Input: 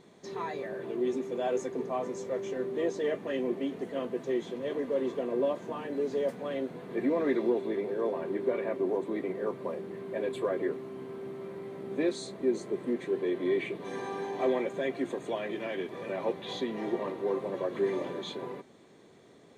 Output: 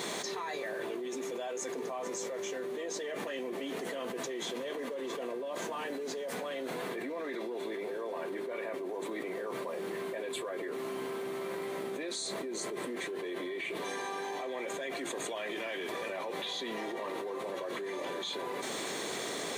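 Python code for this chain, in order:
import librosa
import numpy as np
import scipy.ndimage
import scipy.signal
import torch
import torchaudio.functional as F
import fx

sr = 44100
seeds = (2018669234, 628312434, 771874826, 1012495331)

y = fx.highpass(x, sr, hz=870.0, slope=6)
y = fx.high_shelf(y, sr, hz=5500.0, db=8.5)
y = fx.env_flatten(y, sr, amount_pct=100)
y = y * 10.0 ** (-7.0 / 20.0)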